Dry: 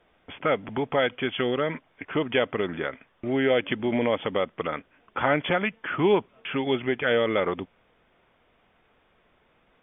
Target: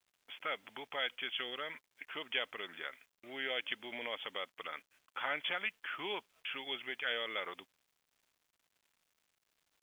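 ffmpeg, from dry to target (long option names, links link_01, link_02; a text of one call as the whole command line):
ffmpeg -i in.wav -af "aderivative,acrusher=bits=11:mix=0:aa=0.000001,volume=2.5dB" out.wav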